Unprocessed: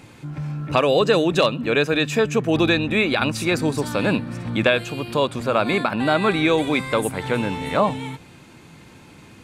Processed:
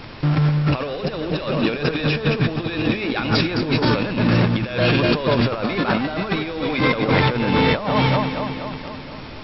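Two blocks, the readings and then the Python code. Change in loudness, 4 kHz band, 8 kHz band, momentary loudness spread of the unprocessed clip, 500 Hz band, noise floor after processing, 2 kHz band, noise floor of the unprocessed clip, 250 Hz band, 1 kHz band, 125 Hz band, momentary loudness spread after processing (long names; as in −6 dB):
+0.5 dB, +1.0 dB, below −20 dB, 8 LU, −2.0 dB, −35 dBFS, 0.0 dB, −47 dBFS, +2.5 dB, +0.5 dB, +7.0 dB, 8 LU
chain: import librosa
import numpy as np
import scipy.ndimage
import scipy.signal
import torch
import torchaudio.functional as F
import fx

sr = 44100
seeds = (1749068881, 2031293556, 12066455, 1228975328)

p1 = fx.fuzz(x, sr, gain_db=40.0, gate_db=-37.0)
p2 = x + F.gain(torch.from_numpy(p1), -10.5).numpy()
p3 = fx.echo_alternate(p2, sr, ms=120, hz=1600.0, feedback_pct=77, wet_db=-8.0)
p4 = fx.over_compress(p3, sr, threshold_db=-20.0, ratio=-0.5)
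p5 = fx.dmg_noise_colour(p4, sr, seeds[0], colour='pink', level_db=-39.0)
p6 = fx.brickwall_lowpass(p5, sr, high_hz=5600.0)
y = F.gain(torch.from_numpy(p6), 1.0).numpy()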